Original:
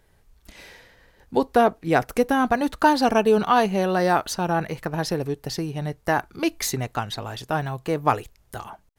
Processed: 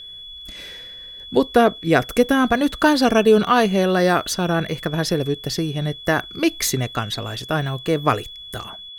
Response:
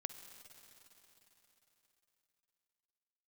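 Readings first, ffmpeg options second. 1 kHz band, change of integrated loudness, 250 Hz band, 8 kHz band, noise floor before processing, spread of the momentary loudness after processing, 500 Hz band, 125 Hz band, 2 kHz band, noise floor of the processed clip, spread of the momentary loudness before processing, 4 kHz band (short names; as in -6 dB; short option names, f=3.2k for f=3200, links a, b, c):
0.0 dB, +3.5 dB, +5.0 dB, +5.0 dB, -60 dBFS, 18 LU, +4.0 dB, +5.0 dB, +4.5 dB, -38 dBFS, 10 LU, +8.5 dB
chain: -af "aeval=exprs='val(0)+0.01*sin(2*PI*3400*n/s)':c=same,equalizer=f=850:w=3.5:g=-10.5,volume=5dB"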